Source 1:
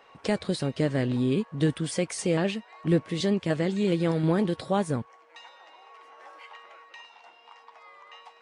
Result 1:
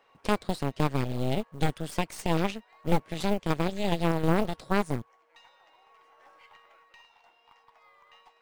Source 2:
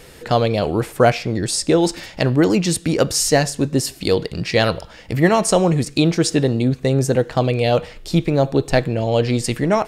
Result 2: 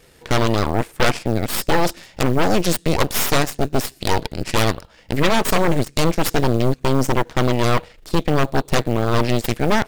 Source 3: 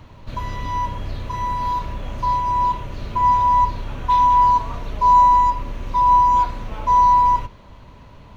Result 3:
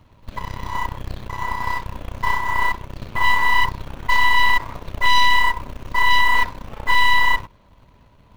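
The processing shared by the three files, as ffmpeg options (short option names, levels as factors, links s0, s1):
-af "aeval=exprs='0.891*(cos(1*acos(clip(val(0)/0.891,-1,1)))-cos(1*PI/2))+0.1*(cos(3*acos(clip(val(0)/0.891,-1,1)))-cos(3*PI/2))+0.112*(cos(6*acos(clip(val(0)/0.891,-1,1)))-cos(6*PI/2))+0.398*(cos(8*acos(clip(val(0)/0.891,-1,1)))-cos(8*PI/2))':c=same,acrusher=bits=7:mode=log:mix=0:aa=0.000001,volume=0.562"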